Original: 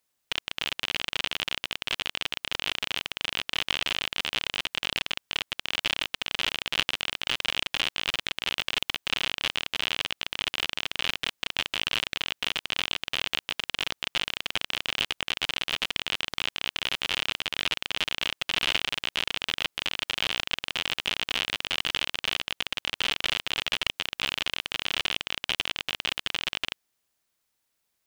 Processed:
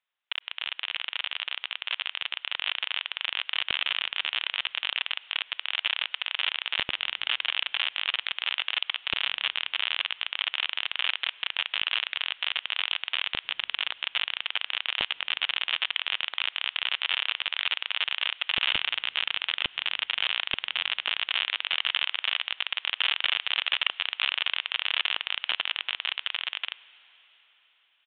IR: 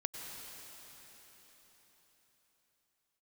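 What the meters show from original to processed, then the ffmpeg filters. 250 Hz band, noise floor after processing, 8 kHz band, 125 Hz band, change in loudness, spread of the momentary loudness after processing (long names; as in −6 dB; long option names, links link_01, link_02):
−12.0 dB, −58 dBFS, below −40 dB, below −10 dB, +1.0 dB, 5 LU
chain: -filter_complex "[0:a]highpass=960,dynaudnorm=framelen=140:gausssize=31:maxgain=5dB,aeval=exprs='(mod(2*val(0)+1,2)-1)/2':channel_layout=same,asplit=2[link_01][link_02];[1:a]atrim=start_sample=2205[link_03];[link_02][link_03]afir=irnorm=-1:irlink=0,volume=-17dB[link_04];[link_01][link_04]amix=inputs=2:normalize=0,aresample=8000,aresample=44100,volume=-2.5dB"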